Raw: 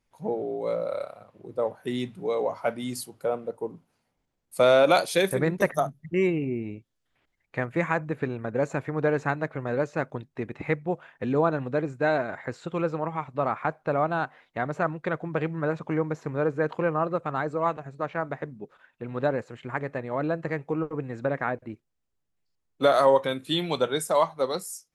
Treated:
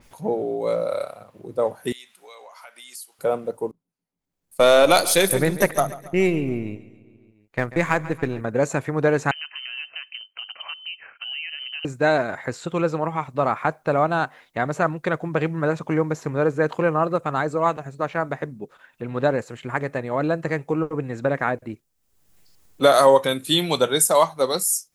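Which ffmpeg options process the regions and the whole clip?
-filter_complex "[0:a]asettb=1/sr,asplit=3[s0][s1][s2];[s0]atrim=end=1.924[s3];[s1]atrim=start=1.92:end=3.19,asetpts=PTS-STARTPTS,afade=t=in:d=0.004:c=qsin,afade=t=out:st=1.266:d=0.004:c=qsin,highpass=1400,acompressor=threshold=0.00316:ratio=3:attack=3.2:release=140:knee=1:detection=peak[s4];[s2]atrim=start=3.186[s5];[s3][s4]acrossfade=d=0.004:c1=hsin:c2=qsin[s6];[s6][s5]acrossfade=d=0.004:c1=qsin:c2=hsin,asettb=1/sr,asplit=3[s7][s8][s9];[s7]atrim=end=3.714[s10];[s8]atrim=start=3.71:end=8.41,asetpts=PTS-STARTPTS,afade=t=in:d=0.004:c=qsin,afade=t=out:st=4.696:d=0.004:c=qsin,aeval=exprs='if(lt(val(0),0),0.708*val(0),val(0))':c=same,agate=range=0.0501:threshold=0.01:ratio=16:release=100:detection=peak,aecho=1:1:139|278|417|556|695:0.141|0.0735|0.0382|0.0199|0.0103,atrim=end_sample=207270[s11];[s9]atrim=start=8.406[s12];[s10][s11]acrossfade=d=0.004:c1=hsin:c2=qsin[s13];[s13][s12]acrossfade=d=0.004:c1=qsin:c2=hsin,asettb=1/sr,asplit=3[s14][s15][s16];[s14]atrim=end=9.314[s17];[s15]atrim=start=9.31:end=11.85,asetpts=PTS-STARTPTS,afade=t=in:d=0.004:c=qsin,afade=t=out:st=2.536:d=0.004:c=qsin,acompressor=threshold=0.0112:ratio=4:attack=3.2:release=140:knee=1:detection=peak,highpass=46,lowpass=f=2700:t=q:w=0.5098,lowpass=f=2700:t=q:w=0.6013,lowpass=f=2700:t=q:w=0.9,lowpass=f=2700:t=q:w=2.563,afreqshift=-3200[s18];[s16]atrim=start=11.846[s19];[s17][s18]acrossfade=d=0.004:c1=hsin:c2=qsin[s20];[s20][s19]acrossfade=d=0.004:c1=qsin:c2=hsin,highshelf=f=6500:g=9.5,acompressor=mode=upward:threshold=0.00562:ratio=2.5,adynamicequalizer=threshold=0.00794:dfrequency=4400:dqfactor=0.7:tfrequency=4400:tqfactor=0.7:attack=5:release=100:ratio=0.375:range=2.5:mode=boostabove:tftype=highshelf,volume=1.78"

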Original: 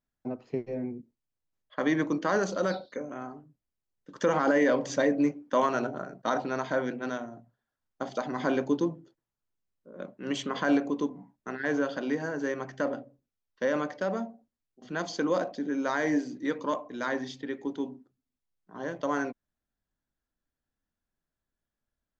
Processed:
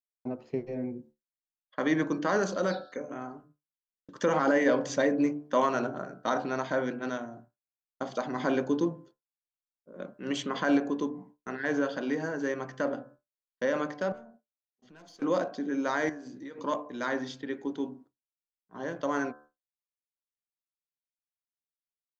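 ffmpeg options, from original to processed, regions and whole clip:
-filter_complex "[0:a]asettb=1/sr,asplit=3[s0][s1][s2];[s0]atrim=end=14.124[s3];[s1]atrim=start=14.12:end=15.22,asetpts=PTS-STARTPTS,afade=t=in:d=0.004:c=qsin,afade=t=out:st=1.096:d=0.004:c=qsin,agate=range=0.0224:threshold=0.00178:ratio=3:release=100:detection=peak,aeval=exprs='(tanh(35.5*val(0)+0.25)-tanh(0.25))/35.5':c=same,acompressor=threshold=0.00316:ratio=5:attack=3.2:release=140:knee=1:detection=peak[s4];[s2]atrim=start=15.216[s5];[s3][s4]acrossfade=d=0.004:c1=hsin:c2=qsin[s6];[s6][s5]acrossfade=d=0.004:c1=qsin:c2=hsin,asettb=1/sr,asplit=3[s7][s8][s9];[s7]atrim=end=16.094[s10];[s8]atrim=start=16.09:end=16.58,asetpts=PTS-STARTPTS,afade=t=in:d=0.004:c=qsin,afade=t=out:st=0.486:d=0.004:c=qsin,acompressor=threshold=0.0112:ratio=10:attack=3.2:release=140:knee=1:detection=peak,asplit=2[s11][s12];[s12]adelay=15,volume=0.251[s13];[s11][s13]amix=inputs=2:normalize=0,atrim=end_sample=21609[s14];[s9]atrim=start=16.576[s15];[s10][s14]acrossfade=d=0.004:c1=hsin:c2=qsin[s16];[s16][s15]acrossfade=d=0.004:c1=qsin:c2=hsin,bandreject=f=73.76:t=h:w=4,bandreject=f=147.52:t=h:w=4,bandreject=f=221.28:t=h:w=4,bandreject=f=295.04:t=h:w=4,bandreject=f=368.8:t=h:w=4,bandreject=f=442.56:t=h:w=4,bandreject=f=516.32:t=h:w=4,bandreject=f=590.08:t=h:w=4,bandreject=f=663.84:t=h:w=4,bandreject=f=737.6:t=h:w=4,bandreject=f=811.36:t=h:w=4,bandreject=f=885.12:t=h:w=4,bandreject=f=958.88:t=h:w=4,bandreject=f=1032.64:t=h:w=4,bandreject=f=1106.4:t=h:w=4,bandreject=f=1180.16:t=h:w=4,bandreject=f=1253.92:t=h:w=4,bandreject=f=1327.68:t=h:w=4,bandreject=f=1401.44:t=h:w=4,bandreject=f=1475.2:t=h:w=4,bandreject=f=1548.96:t=h:w=4,bandreject=f=1622.72:t=h:w=4,bandreject=f=1696.48:t=h:w=4,agate=range=0.0224:threshold=0.00355:ratio=3:detection=peak"

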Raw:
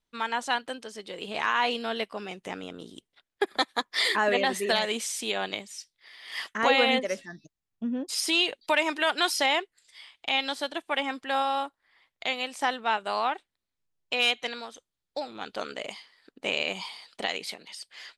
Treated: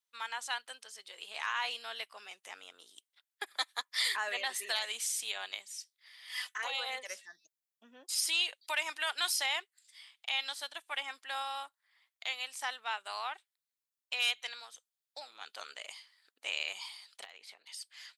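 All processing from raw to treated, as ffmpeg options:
-filter_complex "[0:a]asettb=1/sr,asplit=3[s0][s1][s2];[s0]atrim=end=6.294[s3];[s1]atrim=start=6.29:end=7.07,asetpts=PTS-STARTPTS,afade=t=in:d=0.004:c=qsin,afade=t=out:st=0.776:d=0.004:c=qsin,highpass=380,aecho=1:1:4:0.85,atrim=end_sample=34398,acompressor=threshold=0.0794:ratio=6:attack=3.2:release=140:knee=1:detection=peak[s4];[s2]atrim=start=7.066[s5];[s3][s4]acrossfade=d=0.004:c1=hsin:c2=qsin[s6];[s6][s5]acrossfade=d=0.004:c1=qsin:c2=hsin,asettb=1/sr,asplit=3[s7][s8][s9];[s7]atrim=end=17.244[s10];[s8]atrim=start=17.24:end=17.66,asetpts=PTS-STARTPTS,afade=t=in:d=0.004:c=qsin,afade=t=out:st=0.416:d=0.004:c=qsin,lowpass=f=1300:p=1,acompressor=threshold=0.0126:ratio=5:attack=3.2:release=140:knee=1:detection=peak,asoftclip=type=hard:threshold=0.0316[s11];[s9]atrim=start=17.656[s12];[s10][s11]acrossfade=d=0.004:c1=hsin:c2=qsin[s13];[s13][s12]acrossfade=d=0.004:c1=qsin:c2=hsin,highpass=1000,highshelf=f=6500:g=11.5,volume=0.398"

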